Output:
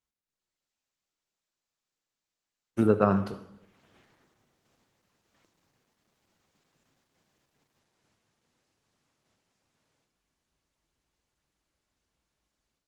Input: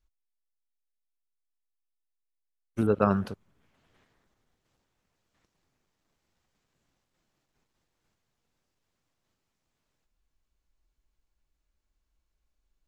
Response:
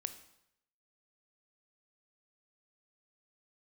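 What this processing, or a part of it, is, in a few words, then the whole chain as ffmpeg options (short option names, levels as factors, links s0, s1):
far-field microphone of a smart speaker: -filter_complex "[1:a]atrim=start_sample=2205[s0];[0:a][s0]afir=irnorm=-1:irlink=0,highpass=110,dynaudnorm=f=250:g=3:m=5.01,volume=0.531" -ar 48000 -c:a libopus -b:a 16k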